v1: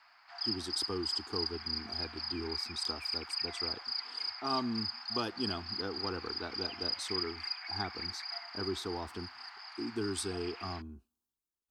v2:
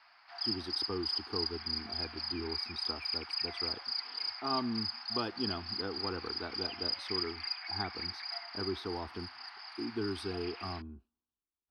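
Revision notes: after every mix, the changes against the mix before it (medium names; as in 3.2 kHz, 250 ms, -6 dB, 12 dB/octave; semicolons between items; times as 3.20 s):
background: remove band-pass filter 1.2 kHz, Q 0.57; master: add boxcar filter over 6 samples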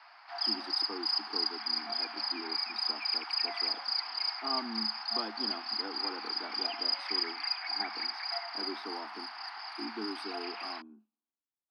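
background +9.5 dB; master: add rippled Chebyshev high-pass 210 Hz, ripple 6 dB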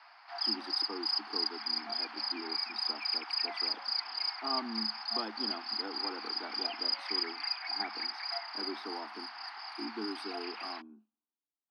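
reverb: off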